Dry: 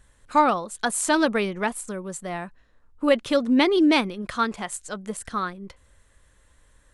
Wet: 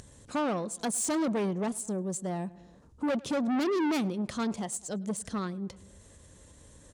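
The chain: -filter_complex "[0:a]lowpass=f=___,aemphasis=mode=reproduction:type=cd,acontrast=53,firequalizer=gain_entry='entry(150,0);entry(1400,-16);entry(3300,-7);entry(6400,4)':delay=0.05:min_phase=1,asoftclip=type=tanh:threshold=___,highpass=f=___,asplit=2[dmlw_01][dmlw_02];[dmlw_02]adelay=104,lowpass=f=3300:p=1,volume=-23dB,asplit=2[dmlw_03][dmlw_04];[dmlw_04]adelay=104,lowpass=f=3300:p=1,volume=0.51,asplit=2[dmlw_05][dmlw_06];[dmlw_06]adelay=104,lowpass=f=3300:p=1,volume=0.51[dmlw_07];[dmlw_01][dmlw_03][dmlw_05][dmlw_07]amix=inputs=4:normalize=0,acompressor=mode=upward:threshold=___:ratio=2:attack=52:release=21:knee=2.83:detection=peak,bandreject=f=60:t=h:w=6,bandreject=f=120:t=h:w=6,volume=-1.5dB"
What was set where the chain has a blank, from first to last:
9600, -24.5dB, 88, -48dB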